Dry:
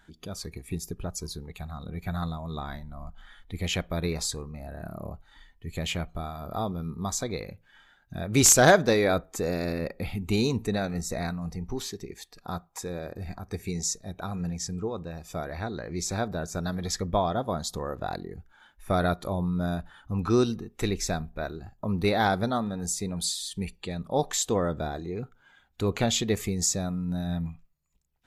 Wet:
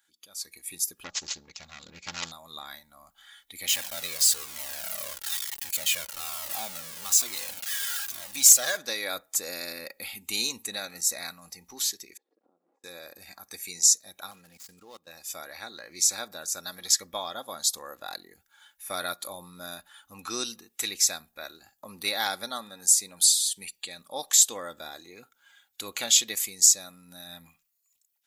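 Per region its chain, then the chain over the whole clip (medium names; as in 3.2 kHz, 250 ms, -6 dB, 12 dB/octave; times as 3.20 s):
1.04–2.32 s: self-modulated delay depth 0.71 ms + bass shelf 370 Hz +7 dB + careless resampling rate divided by 3×, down none, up filtered
3.68–8.77 s: jump at every zero crossing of -27 dBFS + Shepard-style flanger falling 1.1 Hz
12.17–12.84 s: jump at every zero crossing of -42.5 dBFS + compression 8:1, threshold -44 dBFS + Butterworth band-pass 350 Hz, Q 1.4
14.31–15.07 s: median filter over 15 samples + level held to a coarse grid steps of 18 dB
whole clip: differentiator; comb 3.6 ms, depth 39%; level rider gain up to 12 dB; trim -1 dB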